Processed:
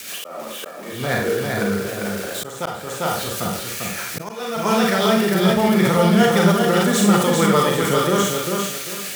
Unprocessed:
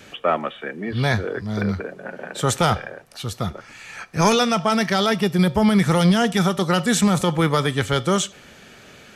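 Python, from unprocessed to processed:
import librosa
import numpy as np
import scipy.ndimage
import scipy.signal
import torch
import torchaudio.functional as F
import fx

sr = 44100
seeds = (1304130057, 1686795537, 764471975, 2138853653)

p1 = x + 0.5 * 10.0 ** (-17.5 / 20.0) * np.diff(np.sign(x), prepend=np.sign(x[:1]))
p2 = fx.highpass(p1, sr, hz=370.0, slope=6)
p3 = fx.high_shelf(p2, sr, hz=2500.0, db=-9.5)
p4 = np.where(np.abs(p3) >= 10.0 ** (-38.0 / 20.0), p3, 0.0)
p5 = p3 + (p4 * 10.0 ** (-3.0 / 20.0))
p6 = fx.rotary(p5, sr, hz=6.7)
p7 = p6 + fx.echo_feedback(p6, sr, ms=397, feedback_pct=28, wet_db=-4.5, dry=0)
p8 = fx.rev_schroeder(p7, sr, rt60_s=0.43, comb_ms=32, drr_db=0.5)
p9 = fx.auto_swell(p8, sr, attack_ms=538.0)
y = fx.sustainer(p9, sr, db_per_s=72.0)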